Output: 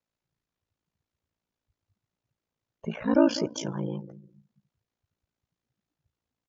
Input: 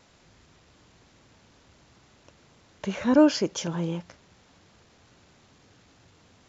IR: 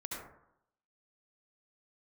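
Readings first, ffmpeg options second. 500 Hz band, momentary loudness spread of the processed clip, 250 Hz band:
−2.5 dB, 16 LU, −3.0 dB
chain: -filter_complex "[0:a]asplit=2[link_01][link_02];[link_02]adelay=201,lowpass=frequency=1600:poles=1,volume=-14dB,asplit=2[link_03][link_04];[link_04]adelay=201,lowpass=frequency=1600:poles=1,volume=0.4,asplit=2[link_05][link_06];[link_06]adelay=201,lowpass=frequency=1600:poles=1,volume=0.4,asplit=2[link_07][link_08];[link_08]adelay=201,lowpass=frequency=1600:poles=1,volume=0.4[link_09];[link_01][link_03][link_05][link_07][link_09]amix=inputs=5:normalize=0,aeval=exprs='val(0)*sin(2*PI*28*n/s)':channel_layout=same,afftdn=noise_reduction=28:noise_floor=-43"

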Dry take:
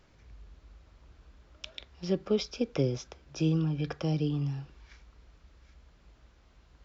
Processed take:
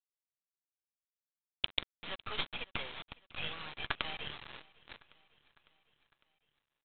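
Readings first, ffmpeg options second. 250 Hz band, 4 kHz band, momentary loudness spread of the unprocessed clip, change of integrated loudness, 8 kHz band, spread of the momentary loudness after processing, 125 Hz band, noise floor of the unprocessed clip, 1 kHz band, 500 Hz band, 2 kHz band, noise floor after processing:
−23.0 dB, +5.0 dB, 16 LU, −8.0 dB, can't be measured, 19 LU, −23.0 dB, −62 dBFS, +3.0 dB, −17.5 dB, +7.5 dB, below −85 dBFS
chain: -af "highpass=frequency=1000:width=0.5412,highpass=frequency=1000:width=1.3066,aresample=8000,acrusher=bits=6:dc=4:mix=0:aa=0.000001,aresample=44100,aecho=1:1:554|1108|1662|2216:0.0668|0.0388|0.0225|0.013,volume=11dB"

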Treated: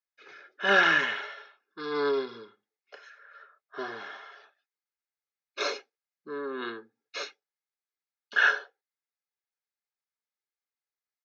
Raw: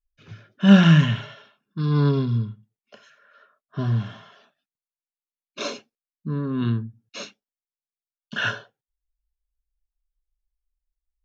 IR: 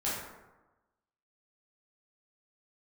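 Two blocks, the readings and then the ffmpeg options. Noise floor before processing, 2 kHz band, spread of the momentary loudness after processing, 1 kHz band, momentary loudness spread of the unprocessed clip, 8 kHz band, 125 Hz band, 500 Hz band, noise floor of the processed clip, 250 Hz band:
below −85 dBFS, +4.5 dB, 21 LU, +1.5 dB, 23 LU, can't be measured, below −30 dB, 0.0 dB, below −85 dBFS, −20.5 dB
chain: -af "highpass=frequency=390:width=0.5412,highpass=frequency=390:width=1.3066,equalizer=frequency=1500:width_type=q:width=4:gain=5,equalizer=frequency=2100:width_type=q:width=4:gain=5,equalizer=frequency=3000:width_type=q:width=4:gain=-7,lowpass=frequency=5900:width=0.5412,lowpass=frequency=5900:width=1.3066,aecho=1:1:2.4:0.42"

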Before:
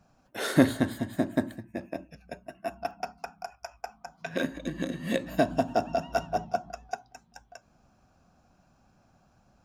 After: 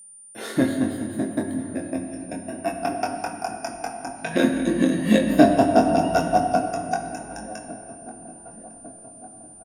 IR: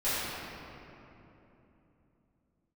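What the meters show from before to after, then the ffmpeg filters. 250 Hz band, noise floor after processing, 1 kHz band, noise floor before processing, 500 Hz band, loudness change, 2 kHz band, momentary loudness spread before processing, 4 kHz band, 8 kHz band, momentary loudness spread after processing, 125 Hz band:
+9.0 dB, −45 dBFS, +9.5 dB, −66 dBFS, +8.0 dB, +8.0 dB, +5.5 dB, 17 LU, +5.0 dB, +11.0 dB, 23 LU, +5.0 dB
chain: -filter_complex "[0:a]equalizer=frequency=260:width=1.4:gain=5.5,agate=range=-11dB:threshold=-54dB:ratio=16:detection=peak,asplit=2[link_01][link_02];[link_02]adelay=1153,lowpass=frequency=1500:poles=1,volume=-21dB,asplit=2[link_03][link_04];[link_04]adelay=1153,lowpass=frequency=1500:poles=1,volume=0.5,asplit=2[link_05][link_06];[link_06]adelay=1153,lowpass=frequency=1500:poles=1,volume=0.5,asplit=2[link_07][link_08];[link_08]adelay=1153,lowpass=frequency=1500:poles=1,volume=0.5[link_09];[link_01][link_03][link_05][link_07][link_09]amix=inputs=5:normalize=0,flanger=delay=8.2:depth=3:regen=56:speed=0.24:shape=triangular,asplit=2[link_10][link_11];[link_11]adelay=23,volume=-5dB[link_12];[link_10][link_12]amix=inputs=2:normalize=0,dynaudnorm=framelen=290:gausssize=11:maxgain=15dB,asplit=2[link_13][link_14];[1:a]atrim=start_sample=2205,asetrate=52920,aresample=44100[link_15];[link_14][link_15]afir=irnorm=-1:irlink=0,volume=-14dB[link_16];[link_13][link_16]amix=inputs=2:normalize=0,aeval=exprs='val(0)+0.00794*sin(2*PI*9200*n/s)':channel_layout=same,volume=-1.5dB"

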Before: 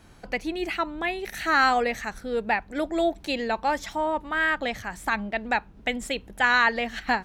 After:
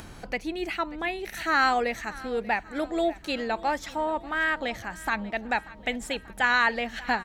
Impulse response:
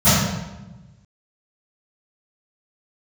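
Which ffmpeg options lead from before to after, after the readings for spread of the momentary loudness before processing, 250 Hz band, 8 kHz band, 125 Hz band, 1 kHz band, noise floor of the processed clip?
10 LU, −2.0 dB, −1.5 dB, −1.5 dB, −2.0 dB, −46 dBFS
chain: -filter_complex "[0:a]acompressor=mode=upward:threshold=-32dB:ratio=2.5,asplit=2[link_01][link_02];[link_02]aecho=0:1:587|1174|1761|2348|2935:0.106|0.0604|0.0344|0.0196|0.0112[link_03];[link_01][link_03]amix=inputs=2:normalize=0,volume=-2dB"

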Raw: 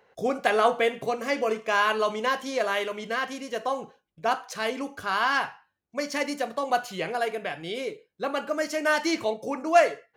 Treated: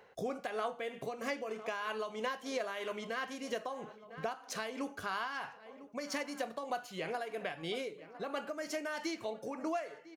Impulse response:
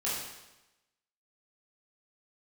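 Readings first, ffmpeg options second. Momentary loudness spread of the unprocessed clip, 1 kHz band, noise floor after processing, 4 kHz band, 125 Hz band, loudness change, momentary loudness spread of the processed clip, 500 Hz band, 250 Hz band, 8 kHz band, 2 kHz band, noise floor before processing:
11 LU, −13.5 dB, −56 dBFS, −11.0 dB, −6.5 dB, −12.5 dB, 5 LU, −12.5 dB, −9.5 dB, −9.0 dB, −13.0 dB, −75 dBFS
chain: -filter_complex "[0:a]asplit=2[link_01][link_02];[link_02]adelay=1001,lowpass=frequency=2100:poles=1,volume=-22.5dB,asplit=2[link_03][link_04];[link_04]adelay=1001,lowpass=frequency=2100:poles=1,volume=0.51,asplit=2[link_05][link_06];[link_06]adelay=1001,lowpass=frequency=2100:poles=1,volume=0.51[link_07];[link_01][link_03][link_05][link_07]amix=inputs=4:normalize=0,acompressor=threshold=-36dB:ratio=6,tremolo=f=3.1:d=0.41,volume=2dB"

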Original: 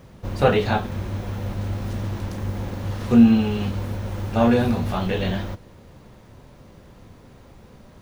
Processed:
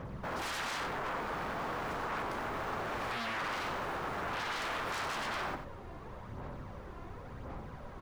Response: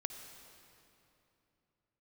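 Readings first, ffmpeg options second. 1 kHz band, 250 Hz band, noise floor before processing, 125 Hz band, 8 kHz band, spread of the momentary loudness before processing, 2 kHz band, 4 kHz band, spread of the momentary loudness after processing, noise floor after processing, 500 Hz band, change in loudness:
−5.5 dB, −24.5 dB, −48 dBFS, −21.0 dB, can't be measured, 14 LU, −3.5 dB, −6.0 dB, 12 LU, −47 dBFS, −15.0 dB, −15.0 dB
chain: -filter_complex "[0:a]asoftclip=type=tanh:threshold=-11dB,highshelf=frequency=2900:gain=-9.5,asplit=2[link_01][link_02];[1:a]atrim=start_sample=2205,asetrate=83790,aresample=44100[link_03];[link_02][link_03]afir=irnorm=-1:irlink=0,volume=-13dB[link_04];[link_01][link_04]amix=inputs=2:normalize=0,aphaser=in_gain=1:out_gain=1:delay=2.9:decay=0.47:speed=0.93:type=sinusoidal,alimiter=limit=-16.5dB:level=0:latency=1:release=70,aeval=exprs='0.02*(abs(mod(val(0)/0.02+3,4)-2)-1)':channel_layout=same,equalizer=frequency=1200:width=0.76:gain=8.5,aecho=1:1:62|93:0.282|0.335,volume=-3.5dB"

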